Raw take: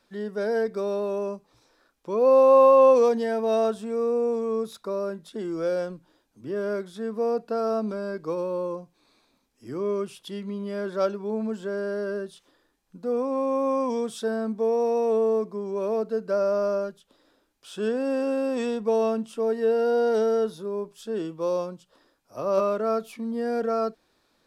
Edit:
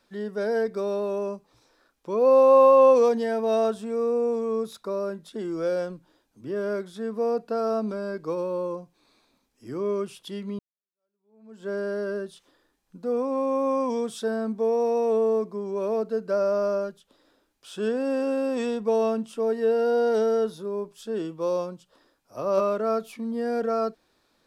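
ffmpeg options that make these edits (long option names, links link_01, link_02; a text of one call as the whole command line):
ffmpeg -i in.wav -filter_complex "[0:a]asplit=2[link_01][link_02];[link_01]atrim=end=10.59,asetpts=PTS-STARTPTS,afade=type=out:start_time=10.586:duration=0.004:curve=hsin[link_03];[link_02]atrim=start=10.59,asetpts=PTS-STARTPTS,afade=type=in:duration=1.1:curve=exp[link_04];[link_03][link_04]concat=n=2:v=0:a=1" out.wav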